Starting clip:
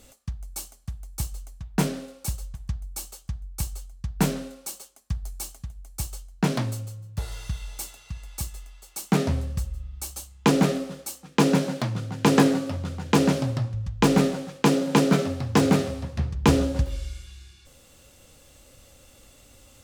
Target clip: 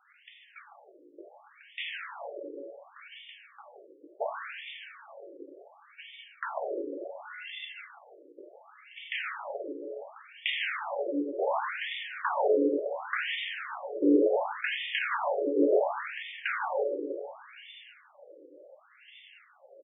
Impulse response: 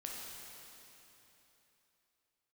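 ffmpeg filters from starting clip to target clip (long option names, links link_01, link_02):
-filter_complex "[0:a]equalizer=frequency=900:width_type=o:width=0.72:gain=-10.5,asplit=2[link_01][link_02];[link_02]acompressor=threshold=-33dB:ratio=6,volume=1dB[link_03];[link_01][link_03]amix=inputs=2:normalize=0,afreqshift=17,aresample=8000,aeval=exprs='0.178*(abs(mod(val(0)/0.178+3,4)-2)-1)':channel_layout=same,aresample=44100[link_04];[1:a]atrim=start_sample=2205,asetrate=52920,aresample=44100[link_05];[link_04][link_05]afir=irnorm=-1:irlink=0,afftfilt=real='re*between(b*sr/1024,390*pow(2600/390,0.5+0.5*sin(2*PI*0.69*pts/sr))/1.41,390*pow(2600/390,0.5+0.5*sin(2*PI*0.69*pts/sr))*1.41)':imag='im*between(b*sr/1024,390*pow(2600/390,0.5+0.5*sin(2*PI*0.69*pts/sr))/1.41,390*pow(2600/390,0.5+0.5*sin(2*PI*0.69*pts/sr))*1.41)':win_size=1024:overlap=0.75,volume=7.5dB"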